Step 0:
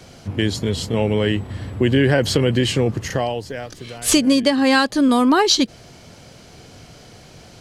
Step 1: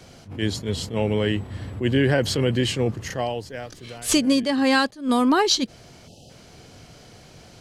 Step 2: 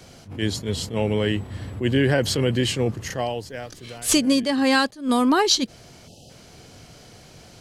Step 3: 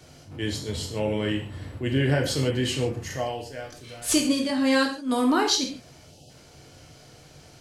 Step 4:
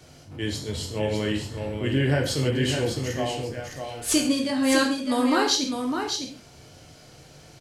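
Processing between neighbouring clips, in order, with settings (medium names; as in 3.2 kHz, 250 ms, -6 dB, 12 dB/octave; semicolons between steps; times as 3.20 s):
spectral selection erased 6.08–6.30 s, 870–2500 Hz; attacks held to a fixed rise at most 180 dB/s; trim -3.5 dB
treble shelf 6.9 kHz +4.5 dB
gated-style reverb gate 180 ms falling, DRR 0.5 dB; trim -6 dB
delay 605 ms -6 dB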